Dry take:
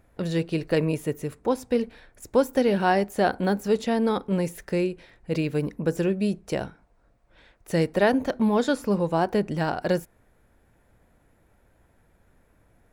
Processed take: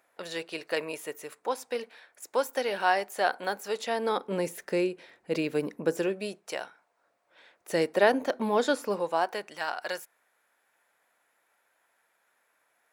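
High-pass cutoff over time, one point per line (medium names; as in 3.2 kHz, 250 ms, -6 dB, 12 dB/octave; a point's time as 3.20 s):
3.75 s 710 Hz
4.43 s 310 Hz
5.88 s 310 Hz
6.64 s 870 Hz
7.73 s 370 Hz
8.77 s 370 Hz
9.49 s 1 kHz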